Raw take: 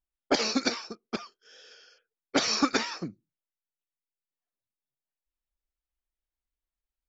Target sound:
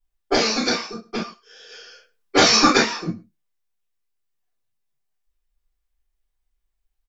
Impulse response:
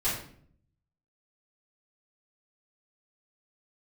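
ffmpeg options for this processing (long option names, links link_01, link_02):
-filter_complex "[0:a]asettb=1/sr,asplit=3[link_01][link_02][link_03];[link_01]atrim=end=1.694[link_04];[link_02]atrim=start=1.69:end=2.77,asetpts=PTS-STARTPTS,afade=type=in:duration=0.004:curve=qsin,afade=type=out:start_time=1.076:duration=0.004:curve=qsin,acontrast=26[link_05];[link_03]atrim=start=2.766[link_06];[link_04][link_05]acrossfade=duration=0.004:curve1=hsin:curve2=qsin[link_07];[link_07][link_06]acrossfade=duration=0.004:curve1=qsin:curve2=hsin,asplit=2[link_08][link_09];[link_09]adelay=105,volume=-21dB,highshelf=frequency=4000:gain=-2.36[link_10];[link_08][link_10]amix=inputs=2:normalize=0[link_11];[1:a]atrim=start_sample=2205,atrim=end_sample=3528[link_12];[link_11][link_12]afir=irnorm=-1:irlink=0"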